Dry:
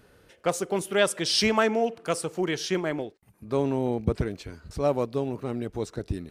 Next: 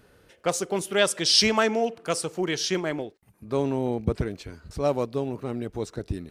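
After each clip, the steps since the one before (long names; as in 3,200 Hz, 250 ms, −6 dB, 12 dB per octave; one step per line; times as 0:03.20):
dynamic equaliser 5,300 Hz, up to +6 dB, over −43 dBFS, Q 0.82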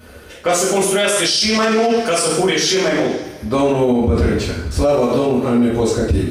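coupled-rooms reverb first 0.55 s, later 1.7 s, from −18 dB, DRR −9 dB
brickwall limiter −16.5 dBFS, peak gain reduction 18.5 dB
level +9 dB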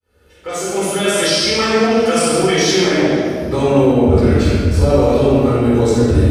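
fade in at the beginning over 1.22 s
rectangular room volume 2,500 cubic metres, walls mixed, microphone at 4.2 metres
level −5 dB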